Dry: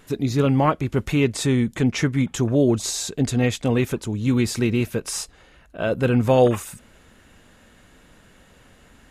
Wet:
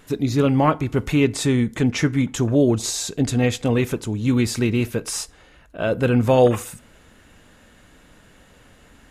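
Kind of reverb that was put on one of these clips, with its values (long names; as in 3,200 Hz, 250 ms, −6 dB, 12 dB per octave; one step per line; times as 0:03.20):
feedback delay network reverb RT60 0.47 s, low-frequency decay 0.85×, high-frequency decay 0.65×, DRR 16 dB
level +1 dB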